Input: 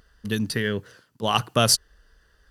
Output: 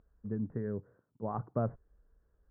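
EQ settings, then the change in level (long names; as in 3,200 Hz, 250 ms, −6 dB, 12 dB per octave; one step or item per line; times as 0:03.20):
Gaussian smoothing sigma 8.3 samples
high-frequency loss of the air 220 metres
−8.5 dB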